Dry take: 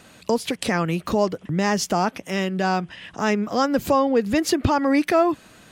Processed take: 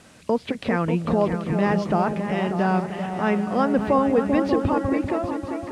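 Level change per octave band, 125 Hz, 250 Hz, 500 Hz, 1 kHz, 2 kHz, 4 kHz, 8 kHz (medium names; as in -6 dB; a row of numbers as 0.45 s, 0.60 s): +2.0 dB, +0.5 dB, -0.5 dB, -1.5 dB, -3.0 dB, -9.5 dB, under -15 dB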